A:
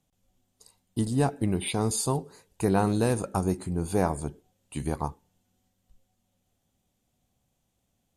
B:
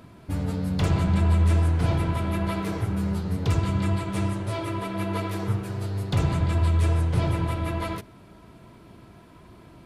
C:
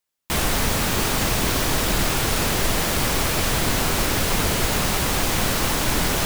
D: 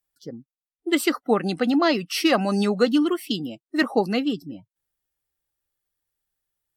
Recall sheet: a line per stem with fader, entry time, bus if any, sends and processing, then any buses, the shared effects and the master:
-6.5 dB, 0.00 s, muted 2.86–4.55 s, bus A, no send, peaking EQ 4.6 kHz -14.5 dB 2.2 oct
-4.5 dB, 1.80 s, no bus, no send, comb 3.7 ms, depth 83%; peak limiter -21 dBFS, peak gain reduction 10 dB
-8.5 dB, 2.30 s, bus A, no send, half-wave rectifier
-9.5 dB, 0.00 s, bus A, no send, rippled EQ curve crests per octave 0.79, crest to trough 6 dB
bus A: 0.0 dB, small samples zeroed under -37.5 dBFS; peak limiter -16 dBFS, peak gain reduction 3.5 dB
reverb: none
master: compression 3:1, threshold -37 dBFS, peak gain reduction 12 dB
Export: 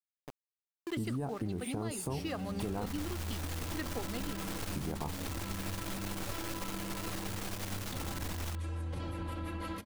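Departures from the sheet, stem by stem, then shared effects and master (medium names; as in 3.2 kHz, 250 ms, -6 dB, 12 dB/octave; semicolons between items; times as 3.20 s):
stem A -6.5 dB -> +5.0 dB; stem D: missing rippled EQ curve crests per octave 0.79, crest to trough 6 dB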